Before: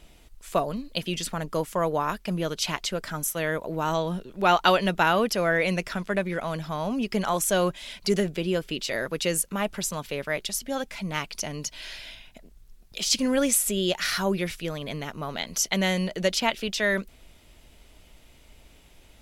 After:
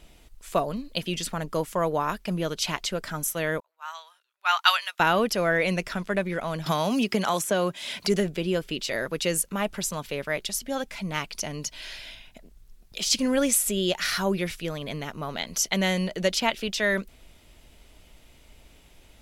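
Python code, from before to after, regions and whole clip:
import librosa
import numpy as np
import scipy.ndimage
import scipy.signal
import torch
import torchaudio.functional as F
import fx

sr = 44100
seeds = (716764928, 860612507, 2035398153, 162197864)

y = fx.chain(x, sr, fx.highpass(hz=1100.0, slope=24),
    fx.band_widen(depth_pct=100), at=(3.6, 5.0))
y = fx.chain(y, sr, fx.highpass(hz=120.0, slope=12),
    fx.band_squash(depth_pct=100), at=(6.66, 8.07))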